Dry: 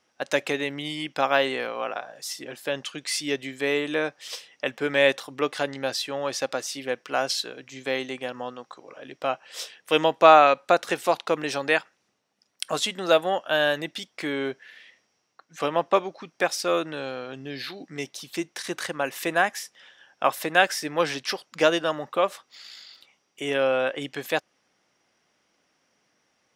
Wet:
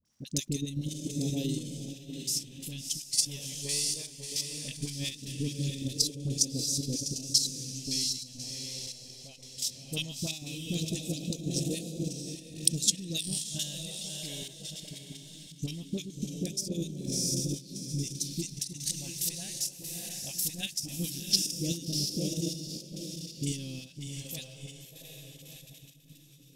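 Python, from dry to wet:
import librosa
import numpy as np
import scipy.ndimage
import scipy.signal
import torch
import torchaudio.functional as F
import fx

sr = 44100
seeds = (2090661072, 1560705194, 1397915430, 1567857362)

p1 = scipy.signal.sosfilt(scipy.signal.cheby1(2, 1.0, [200.0, 6600.0], 'bandstop', fs=sr, output='sos'), x)
p2 = fx.transient(p1, sr, attack_db=6, sustain_db=-6)
p3 = fx.low_shelf(p2, sr, hz=200.0, db=6.0)
p4 = p3 + fx.echo_diffused(p3, sr, ms=675, feedback_pct=46, wet_db=-3, dry=0)
p5 = fx.phaser_stages(p4, sr, stages=2, low_hz=270.0, high_hz=1200.0, hz=0.19, feedback_pct=40)
p6 = fx.dmg_crackle(p5, sr, seeds[0], per_s=180.0, level_db=-62.0)
p7 = fx.chopper(p6, sr, hz=0.96, depth_pct=60, duty_pct=85)
p8 = fx.level_steps(p7, sr, step_db=9)
p9 = fx.dispersion(p8, sr, late='highs', ms=52.0, hz=820.0)
y = p9 * 10.0 ** (6.0 / 20.0)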